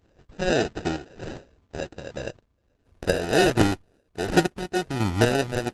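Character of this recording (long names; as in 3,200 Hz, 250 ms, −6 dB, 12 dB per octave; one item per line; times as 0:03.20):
aliases and images of a low sample rate 1,100 Hz, jitter 0%
chopped level 1.4 Hz, depth 60%, duty 35%
Opus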